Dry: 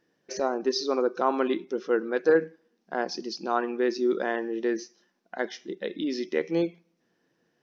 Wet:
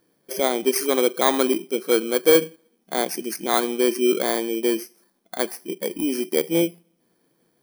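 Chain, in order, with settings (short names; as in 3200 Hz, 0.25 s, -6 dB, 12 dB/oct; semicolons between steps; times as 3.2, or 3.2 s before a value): FFT order left unsorted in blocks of 16 samples; gain +5.5 dB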